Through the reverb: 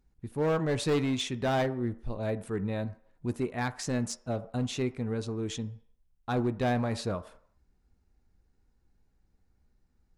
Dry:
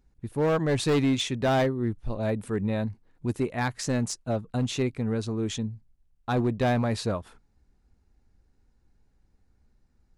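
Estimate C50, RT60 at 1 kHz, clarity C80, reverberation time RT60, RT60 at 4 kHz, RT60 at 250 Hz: 16.5 dB, 0.60 s, 19.5 dB, 0.55 s, 0.60 s, 0.45 s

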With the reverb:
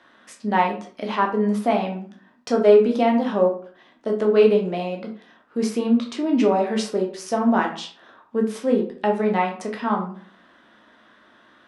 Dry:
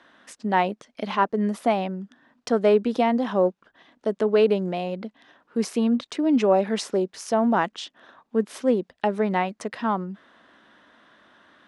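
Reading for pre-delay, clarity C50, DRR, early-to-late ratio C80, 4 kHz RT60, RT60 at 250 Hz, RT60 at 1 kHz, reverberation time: 10 ms, 8.5 dB, 0.5 dB, 13.0 dB, 0.30 s, 0.50 s, 0.45 s, 0.50 s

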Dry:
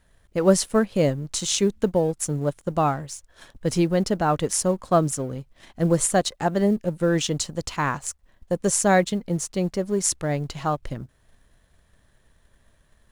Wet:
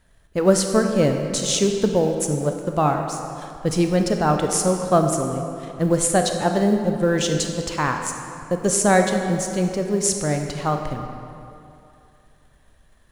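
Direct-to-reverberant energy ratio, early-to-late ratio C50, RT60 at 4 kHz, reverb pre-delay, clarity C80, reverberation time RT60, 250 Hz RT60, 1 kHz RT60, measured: 4.0 dB, 5.0 dB, 1.7 s, 25 ms, 6.0 dB, 2.7 s, 2.6 s, 2.7 s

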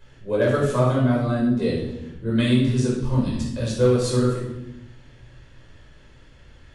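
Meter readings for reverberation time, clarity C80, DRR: 0.95 s, 5.0 dB, -5.0 dB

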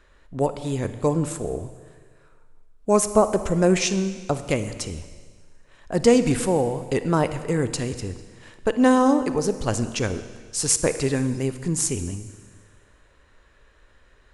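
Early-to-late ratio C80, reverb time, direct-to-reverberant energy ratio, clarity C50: 13.0 dB, 1.6 s, 11.0 dB, 11.5 dB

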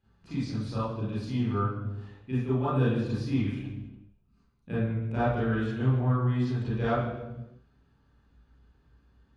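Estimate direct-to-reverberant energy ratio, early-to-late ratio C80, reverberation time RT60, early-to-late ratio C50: -12.0 dB, 3.5 dB, 1.0 s, -2.0 dB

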